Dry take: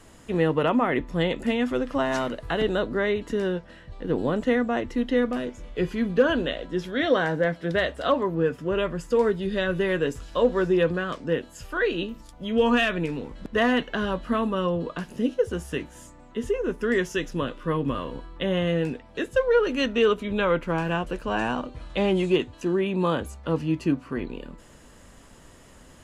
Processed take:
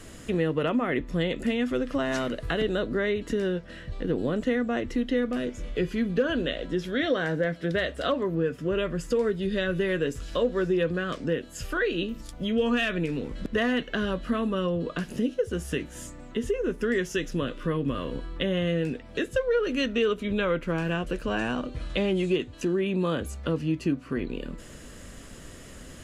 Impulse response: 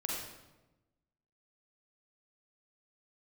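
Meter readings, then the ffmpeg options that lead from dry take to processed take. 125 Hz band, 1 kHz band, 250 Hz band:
−1.0 dB, −6.5 dB, −1.5 dB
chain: -af "equalizer=frequency=900:width=2.3:gain=-9.5,acompressor=threshold=-36dB:ratio=2,volume=6.5dB"

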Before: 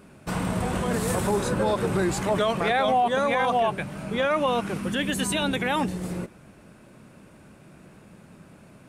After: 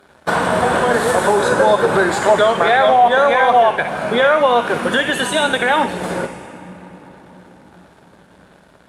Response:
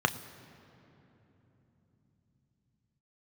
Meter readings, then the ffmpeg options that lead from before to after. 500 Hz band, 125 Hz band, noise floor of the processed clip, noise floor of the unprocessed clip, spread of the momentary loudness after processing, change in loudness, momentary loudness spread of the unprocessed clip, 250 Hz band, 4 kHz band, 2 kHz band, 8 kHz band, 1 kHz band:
+11.5 dB, +0.5 dB, −49 dBFS, −52 dBFS, 9 LU, +10.5 dB, 9 LU, +3.5 dB, +9.0 dB, +13.0 dB, +5.5 dB, +11.5 dB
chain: -filter_complex "[0:a]highpass=frequency=1100:poles=1,acompressor=threshold=-34dB:ratio=3,aeval=exprs='sgn(val(0))*max(abs(val(0))-0.00158,0)':channel_layout=same[link_01];[1:a]atrim=start_sample=2205,asetrate=23373,aresample=44100[link_02];[link_01][link_02]afir=irnorm=-1:irlink=0,volume=7dB" -ar 48000 -c:a libmp3lame -b:a 112k

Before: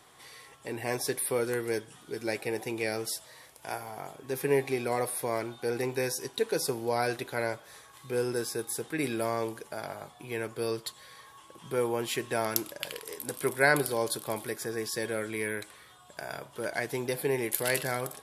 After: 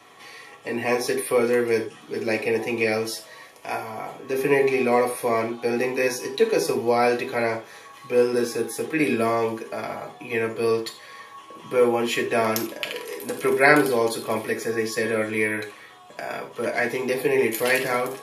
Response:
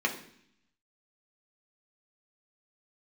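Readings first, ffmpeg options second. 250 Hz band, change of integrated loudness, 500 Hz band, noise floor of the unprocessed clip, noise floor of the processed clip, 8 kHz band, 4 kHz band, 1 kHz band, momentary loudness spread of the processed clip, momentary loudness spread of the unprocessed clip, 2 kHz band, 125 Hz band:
+9.0 dB, +8.5 dB, +9.0 dB, −55 dBFS, −47 dBFS, +1.0 dB, +5.0 dB, +9.0 dB, 15 LU, 14 LU, +8.5 dB, +2.5 dB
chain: -filter_complex "[1:a]atrim=start_sample=2205,atrim=end_sample=4410[link_01];[0:a][link_01]afir=irnorm=-1:irlink=0"

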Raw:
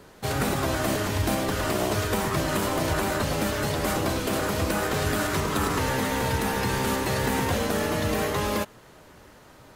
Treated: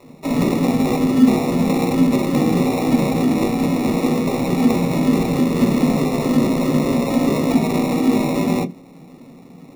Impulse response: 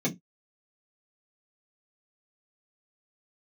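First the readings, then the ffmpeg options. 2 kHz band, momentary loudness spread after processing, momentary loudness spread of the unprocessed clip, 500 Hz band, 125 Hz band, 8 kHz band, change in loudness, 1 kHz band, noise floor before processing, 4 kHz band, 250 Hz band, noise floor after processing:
−2.0 dB, 3 LU, 1 LU, +6.0 dB, +6.0 dB, −2.0 dB, +8.0 dB, +2.0 dB, −51 dBFS, −0.5 dB, +14.0 dB, −43 dBFS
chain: -filter_complex "[0:a]afreqshift=160,acrusher=samples=28:mix=1:aa=0.000001,asplit=2[link_01][link_02];[1:a]atrim=start_sample=2205,lowshelf=frequency=380:gain=10,adelay=10[link_03];[link_02][link_03]afir=irnorm=-1:irlink=0,volume=-15dB[link_04];[link_01][link_04]amix=inputs=2:normalize=0"

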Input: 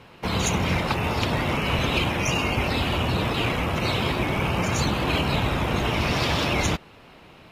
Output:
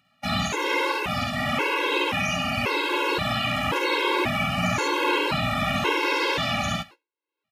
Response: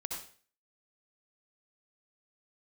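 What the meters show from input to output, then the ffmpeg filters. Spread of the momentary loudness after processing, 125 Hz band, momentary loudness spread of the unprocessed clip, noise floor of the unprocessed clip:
3 LU, −7.5 dB, 2 LU, −49 dBFS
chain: -filter_complex "[0:a]highpass=frequency=470:poles=1,agate=range=-57dB:threshold=-41dB:ratio=16:detection=peak,equalizer=frequency=710:width=7.3:gain=-9,alimiter=limit=-19dB:level=0:latency=1:release=347,asplit=2[link_01][link_02];[1:a]atrim=start_sample=2205,asetrate=74970,aresample=44100[link_03];[link_02][link_03]afir=irnorm=-1:irlink=0,volume=-16.5dB[link_04];[link_01][link_04]amix=inputs=2:normalize=0,acompressor=mode=upward:threshold=-42dB:ratio=2.5,aecho=1:1:50|67:0.501|0.596,acrossover=split=3100[link_05][link_06];[link_06]acompressor=threshold=-38dB:ratio=4:attack=1:release=60[link_07];[link_05][link_07]amix=inputs=2:normalize=0,afftfilt=real='re*gt(sin(2*PI*0.94*pts/sr)*(1-2*mod(floor(b*sr/1024/280),2)),0)':imag='im*gt(sin(2*PI*0.94*pts/sr)*(1-2*mod(floor(b*sr/1024/280),2)),0)':win_size=1024:overlap=0.75,volume=7dB"

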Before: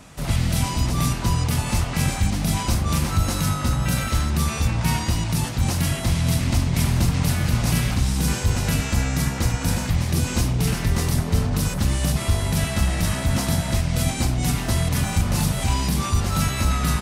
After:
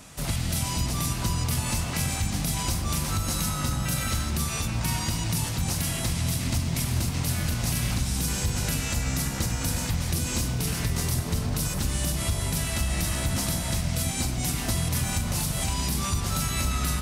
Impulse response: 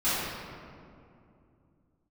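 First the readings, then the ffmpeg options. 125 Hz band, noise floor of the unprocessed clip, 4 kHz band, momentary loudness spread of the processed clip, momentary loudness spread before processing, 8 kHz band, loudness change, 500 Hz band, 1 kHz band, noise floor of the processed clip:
−6.5 dB, −28 dBFS, −2.0 dB, 1 LU, 2 LU, 0.0 dB, −4.5 dB, −6.0 dB, −5.5 dB, −31 dBFS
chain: -filter_complex "[0:a]highshelf=frequency=3800:gain=8.5,acompressor=threshold=-20dB:ratio=6,asplit=2[link_01][link_02];[1:a]atrim=start_sample=2205,adelay=100[link_03];[link_02][link_03]afir=irnorm=-1:irlink=0,volume=-22dB[link_04];[link_01][link_04]amix=inputs=2:normalize=0,volume=-3.5dB"

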